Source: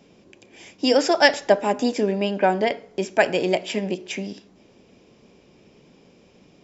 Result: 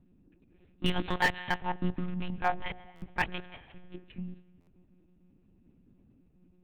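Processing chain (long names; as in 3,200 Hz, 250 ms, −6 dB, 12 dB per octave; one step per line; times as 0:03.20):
adaptive Wiener filter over 41 samples
Chebyshev band-stop filter 340–740 Hz, order 5
0:03.41–0:03.94: tuned comb filter 230 Hz, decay 1.1 s, mix 80%
convolution reverb RT60 2.0 s, pre-delay 96 ms, DRR 18.5 dB
one-pitch LPC vocoder at 8 kHz 180 Hz
0:00.84–0:01.57: high-shelf EQ 2,800 Hz → 2,100 Hz +11.5 dB
0:02.33–0:02.85: mains-hum notches 60/120/180/240/300/360 Hz
buffer that repeats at 0:02.95/0:04.60, samples 512, times 5
slew-rate limiting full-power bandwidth 250 Hz
level −5 dB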